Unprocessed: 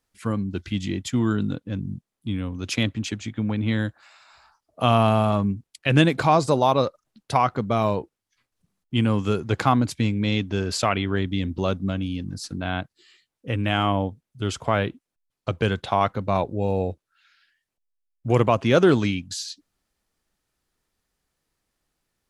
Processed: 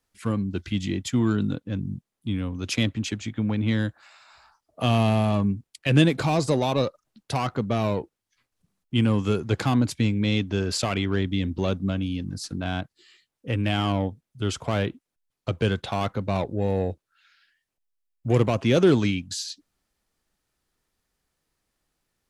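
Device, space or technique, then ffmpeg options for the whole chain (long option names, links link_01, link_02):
one-band saturation: -filter_complex "[0:a]acrossover=split=520|2400[link_01][link_02][link_03];[link_02]asoftclip=type=tanh:threshold=-29dB[link_04];[link_01][link_04][link_03]amix=inputs=3:normalize=0"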